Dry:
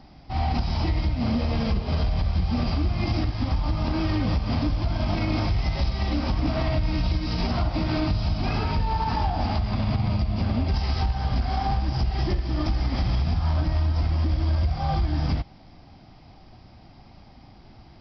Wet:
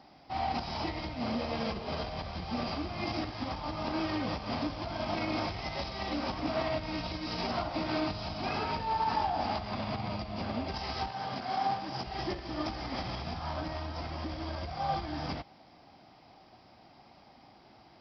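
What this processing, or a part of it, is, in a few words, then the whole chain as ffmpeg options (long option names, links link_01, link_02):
filter by subtraction: -filter_complex "[0:a]asplit=2[link_01][link_02];[link_02]lowpass=600,volume=-1[link_03];[link_01][link_03]amix=inputs=2:normalize=0,asettb=1/sr,asplit=3[link_04][link_05][link_06];[link_04]atrim=end=11.084[link_07];[link_05]atrim=start=11.08:end=12.07,asetpts=PTS-STARTPTS,afade=type=in:duration=0.004:curve=qsin,afade=type=out:start_time=0.986:duration=0.004:curve=qsin,highpass=frequency=110:width=0.5412,highpass=frequency=110:width=1.3066[link_08];[link_06]atrim=start=12.066[link_09];[link_07][link_08]acrossfade=duration=0.004:curve1=hsin:curve2=qsin[link_10];[link_10][link_09]acrossfade=duration=0.004:curve1=qsin:curve2=hsin,volume=-4dB"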